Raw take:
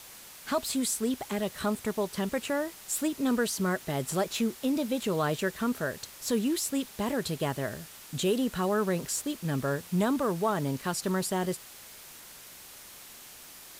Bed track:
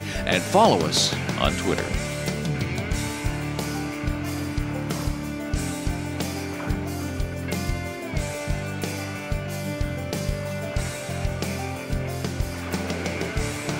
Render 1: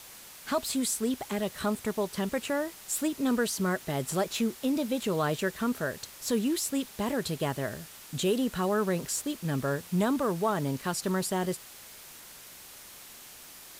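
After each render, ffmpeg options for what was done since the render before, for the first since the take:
-af anull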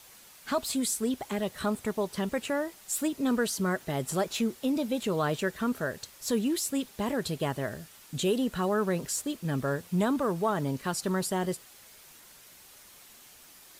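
-af "afftdn=nr=6:nf=-49"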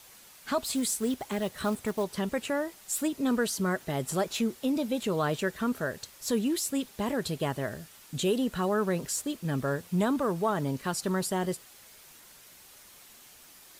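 -filter_complex "[0:a]asettb=1/sr,asplit=3[a][b][c];[a]atrim=end=0.724[d];[b]atrim=start=0.72:end=2.04,asetpts=PTS-STARTPTS,afade=t=in:d=0.004:c=qsin,afade=t=out:st=1.316:d=0.004:c=qsin,acrusher=bits=5:mode=log:mix=0:aa=0.000001[e];[c]atrim=start=2.036[f];[d][e]acrossfade=d=0.004:c1=hsin:c2=qsin[g];[g][f]acrossfade=d=0.004:c1=qsin:c2=hsin"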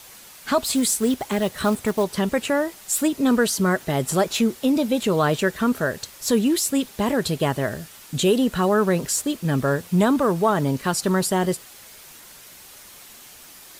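-af "volume=8.5dB"

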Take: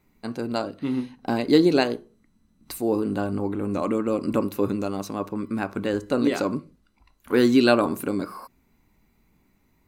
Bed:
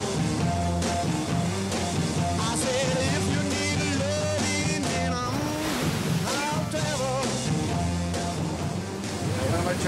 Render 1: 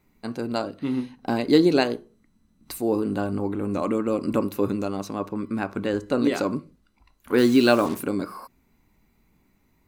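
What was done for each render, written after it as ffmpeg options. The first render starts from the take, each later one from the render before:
-filter_complex "[0:a]asettb=1/sr,asplit=3[a][b][c];[a]atrim=end=4.854[d];[b]atrim=start=4.85:end=6.22,asetpts=PTS-STARTPTS,afade=t=in:d=0.004:c=qsin,afade=t=out:st=1.366:d=0.004:c=qsin,highshelf=f=10k:g=-6.5[e];[c]atrim=start=6.216[f];[d][e]acrossfade=d=0.004:c1=hsin:c2=qsin[g];[g][f]acrossfade=d=0.004:c1=qsin:c2=hsin,asettb=1/sr,asplit=3[h][i][j];[h]atrim=end=7.384[k];[i]atrim=start=7.38:end=8,asetpts=PTS-STARTPTS,afade=t=in:d=0.004:c=qsin,afade=t=out:st=0.616:d=0.004:c=qsin,acrusher=bits=5:mix=0:aa=0.5[l];[j]atrim=start=7.996[m];[k][l]acrossfade=d=0.004:c1=hsin:c2=qsin[n];[n][m]acrossfade=d=0.004:c1=qsin:c2=hsin"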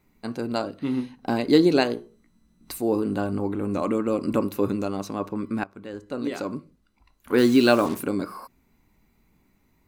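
-filter_complex "[0:a]asettb=1/sr,asplit=3[a][b][c];[a]atrim=end=1.954[d];[b]atrim=start=1.95:end=2.72,asetpts=PTS-STARTPTS,afade=t=in:d=0.004:c=qsin,afade=t=out:st=0.766:d=0.004:c=qsin,asplit=2[e][f];[f]adelay=17,volume=-4dB[g];[e][g]amix=inputs=2:normalize=0,atrim=end_sample=33957[h];[c]atrim=start=2.716[i];[d][h]acrossfade=d=0.004:c1=hsin:c2=qsin[j];[j][i]acrossfade=d=0.004:c1=qsin:c2=hsin,asplit=2[k][l];[k]atrim=end=5.64,asetpts=PTS-STARTPTS,afade=t=out:st=5.636:d=0.004:c=hsin:silence=0.141254[m];[l]atrim=start=5.64,asetpts=PTS-STARTPTS,afade=t=in:d=1.73:silence=0.141254[n];[m][n]concat=n=2:v=0:a=1"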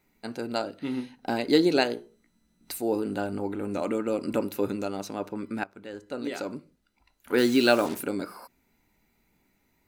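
-af "lowshelf=f=300:g=-9,bandreject=f=1.1k:w=5.2"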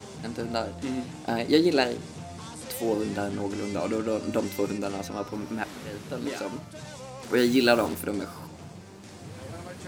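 -filter_complex "[1:a]volume=-14.5dB[a];[0:a][a]amix=inputs=2:normalize=0"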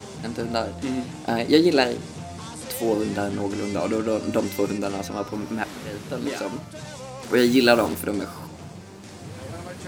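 -af "volume=4dB"

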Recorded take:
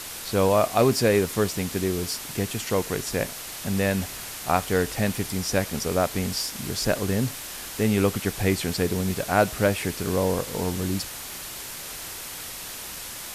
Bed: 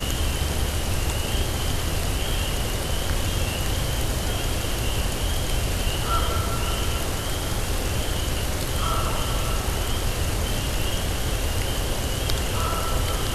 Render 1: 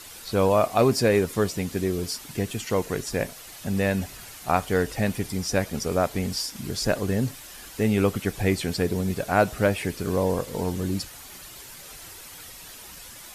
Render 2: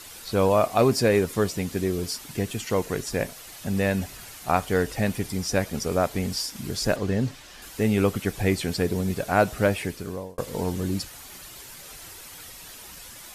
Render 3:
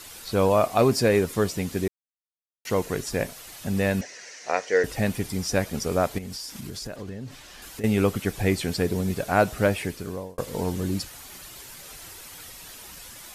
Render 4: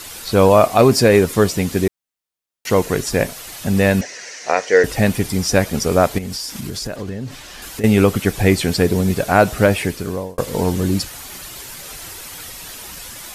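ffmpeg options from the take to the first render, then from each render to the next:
-af "afftdn=nr=9:nf=-37"
-filter_complex "[0:a]asettb=1/sr,asplit=3[a][b][c];[a]atrim=end=6.964[d];[b]atrim=start=6.96:end=7.62,asetpts=PTS-STARTPTS,afade=t=in:d=0.004:c=qsin,afade=t=out:st=0.656:d=0.004:c=qsin,acrossover=split=6600[e][f];[f]acompressor=threshold=-58dB:ratio=4:attack=1:release=60[g];[e][g]amix=inputs=2:normalize=0[h];[c]atrim=start=7.616[i];[d][h]acrossfade=d=0.004:c1=hsin:c2=qsin[j];[j][i]acrossfade=d=0.004:c1=qsin:c2=hsin,asplit=2[k][l];[k]atrim=end=10.38,asetpts=PTS-STARTPTS,afade=t=out:st=9.76:d=0.62[m];[l]atrim=start=10.38,asetpts=PTS-STARTPTS,afade=t=in:d=0.004:c=hsin[n];[m][n]concat=n=2:v=0:a=1"
-filter_complex "[0:a]asettb=1/sr,asplit=3[a][b][c];[a]atrim=end=4.014[d];[b]atrim=start=4.01:end=4.84,asetpts=PTS-STARTPTS,afade=t=in:d=0.004:c=qsin,afade=t=out:st=0.826:d=0.004:c=qsin,highpass=460,equalizer=f=490:t=q:w=4:g=9,equalizer=f=810:t=q:w=4:g=-6,equalizer=f=1.2k:t=q:w=4:g=-9,equalizer=f=1.9k:t=q:w=4:g=9,equalizer=f=3.4k:t=q:w=4:g=-7,equalizer=f=5.9k:t=q:w=4:g=9,lowpass=f=6.6k:w=0.5412,lowpass=f=6.6k:w=1.3066[e];[c]atrim=start=4.836[f];[d][e]acrossfade=d=0.004:c1=hsin:c2=qsin[g];[g][f]acrossfade=d=0.004:c1=qsin:c2=hsin,asettb=1/sr,asplit=3[h][i][j];[h]atrim=end=6.184[k];[i]atrim=start=6.18:end=7.84,asetpts=PTS-STARTPTS,afade=t=in:d=0.004:c=qsin,afade=t=out:st=1.656:d=0.004:c=qsin,acompressor=threshold=-32dB:ratio=6:attack=3.2:release=140:knee=1:detection=peak[l];[j]atrim=start=7.836[m];[k][l]acrossfade=d=0.004:c1=hsin:c2=qsin[n];[n][m]acrossfade=d=0.004:c1=qsin:c2=hsin,asplit=3[o][p][q];[o]atrim=end=1.88,asetpts=PTS-STARTPTS,afade=t=out:st=1.876:d=0.004:c=hsin[r];[p]atrim=start=1.88:end=2.65,asetpts=PTS-STARTPTS,volume=0[s];[q]atrim=start=2.65,asetpts=PTS-STARTPTS,afade=t=in:d=0.004:c=hsin[t];[r][s][t]concat=n=3:v=0:a=1"
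-af "volume=9dB,alimiter=limit=-1dB:level=0:latency=1"

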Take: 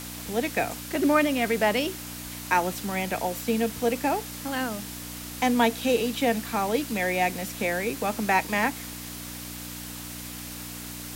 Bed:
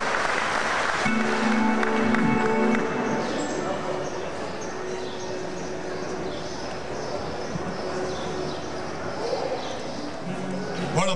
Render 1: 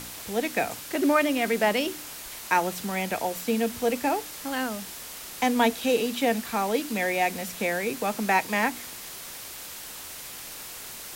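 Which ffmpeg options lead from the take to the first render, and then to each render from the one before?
-af "bandreject=f=60:t=h:w=4,bandreject=f=120:t=h:w=4,bandreject=f=180:t=h:w=4,bandreject=f=240:t=h:w=4,bandreject=f=300:t=h:w=4"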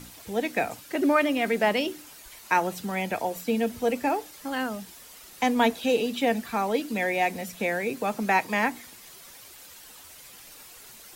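-af "afftdn=nr=10:nf=-40"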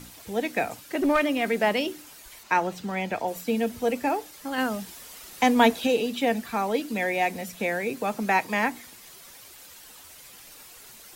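-filter_complex "[0:a]asettb=1/sr,asplit=3[a][b][c];[a]atrim=end=0.984[d];[b]atrim=start=0.98:end=1.42,asetpts=PTS-STARTPTS,afade=t=in:d=0.004:c=qsin,afade=t=out:st=0.436:d=0.004:c=qsin,aeval=exprs='clip(val(0),-1,0.0891)':c=same[e];[c]atrim=start=1.416[f];[d][e]acrossfade=d=0.004:c1=hsin:c2=qsin[g];[g][f]acrossfade=d=0.004:c1=qsin:c2=hsin,asettb=1/sr,asplit=3[h][i][j];[h]atrim=end=2.434[k];[i]atrim=start=2.43:end=3.28,asetpts=PTS-STARTPTS,afade=t=in:d=0.004:c=qsin,afade=t=out:st=0.846:d=0.004:c=qsin,equalizer=f=12k:w=0.81:g=-11.5[l];[j]atrim=start=3.276[m];[k][l]acrossfade=d=0.004:c1=hsin:c2=qsin[n];[n][m]acrossfade=d=0.004:c1=qsin:c2=hsin,asplit=3[o][p][q];[o]atrim=end=4.582[r];[p]atrim=start=4.578:end=5.872,asetpts=PTS-STARTPTS,volume=3.5dB[s];[q]atrim=start=5.868[t];[r][s]acrossfade=d=0.004:c1=hsin:c2=hsin[u];[u][t]acrossfade=d=0.004:c1=hsin:c2=hsin"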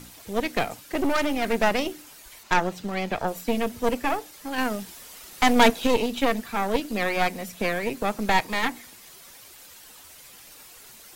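-af "aeval=exprs='0.501*(cos(1*acos(clip(val(0)/0.501,-1,1)))-cos(1*PI/2))+0.0708*(cos(4*acos(clip(val(0)/0.501,-1,1)))-cos(4*PI/2))+0.141*(cos(6*acos(clip(val(0)/0.501,-1,1)))-cos(6*PI/2))':c=same"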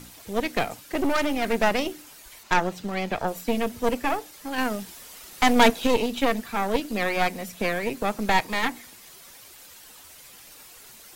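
-af anull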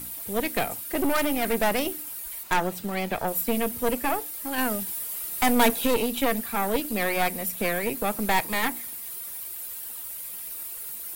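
-af "asoftclip=type=tanh:threshold=-12dB,aexciter=amount=6.3:drive=2.2:freq=8.7k"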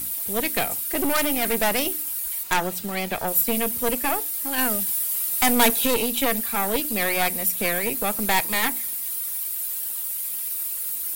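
-af "highshelf=f=2.7k:g=8"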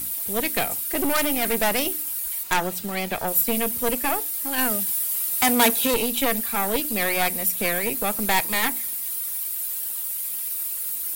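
-filter_complex "[0:a]asettb=1/sr,asplit=3[a][b][c];[a]atrim=end=4.714[d];[b]atrim=start=4.71:end=5.94,asetpts=PTS-STARTPTS,afade=t=in:d=0.004:c=qsin,afade=t=out:st=1.226:d=0.004:c=qsin,highpass=59[e];[c]atrim=start=5.936[f];[d][e]acrossfade=d=0.004:c1=hsin:c2=qsin[g];[g][f]acrossfade=d=0.004:c1=qsin:c2=hsin"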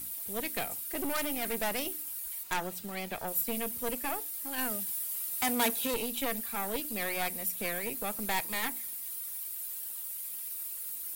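-af "volume=-10.5dB"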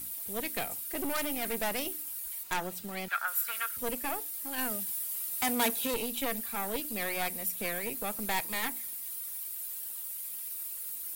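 -filter_complex "[0:a]asettb=1/sr,asplit=3[a][b][c];[a]atrim=end=3.084[d];[b]atrim=start=3.08:end=3.77,asetpts=PTS-STARTPTS,afade=t=in:d=0.004:c=qsin,afade=t=out:st=0.686:d=0.004:c=qsin,highpass=f=1.4k:t=q:w=12[e];[c]atrim=start=3.766[f];[d][e]acrossfade=d=0.004:c1=hsin:c2=qsin[g];[g][f]acrossfade=d=0.004:c1=qsin:c2=hsin"

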